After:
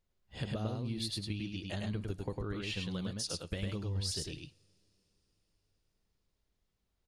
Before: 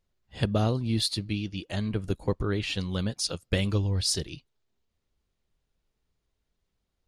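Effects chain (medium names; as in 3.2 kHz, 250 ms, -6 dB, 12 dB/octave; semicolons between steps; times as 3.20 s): compression, threshold -31 dBFS, peak gain reduction 11 dB; delay 103 ms -3 dB; on a send at -22 dB: reverberation, pre-delay 3 ms; on the sum: trim -4 dB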